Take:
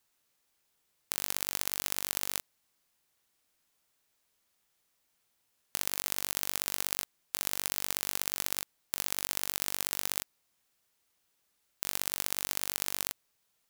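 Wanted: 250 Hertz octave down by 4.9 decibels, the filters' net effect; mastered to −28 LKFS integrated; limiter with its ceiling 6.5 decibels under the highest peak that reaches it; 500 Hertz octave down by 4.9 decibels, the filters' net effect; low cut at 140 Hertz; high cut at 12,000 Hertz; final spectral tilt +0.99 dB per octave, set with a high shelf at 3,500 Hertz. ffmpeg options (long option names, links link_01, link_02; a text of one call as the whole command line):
ffmpeg -i in.wav -af "highpass=140,lowpass=12000,equalizer=frequency=250:width_type=o:gain=-4,equalizer=frequency=500:width_type=o:gain=-5.5,highshelf=frequency=3500:gain=5,volume=8.5dB,alimiter=limit=-2dB:level=0:latency=1" out.wav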